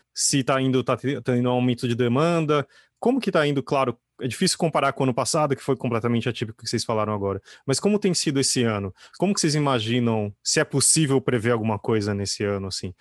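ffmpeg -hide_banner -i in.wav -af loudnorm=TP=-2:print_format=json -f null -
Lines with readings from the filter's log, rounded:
"input_i" : "-22.7",
"input_tp" : "-6.0",
"input_lra" : "2.4",
"input_thresh" : "-32.8",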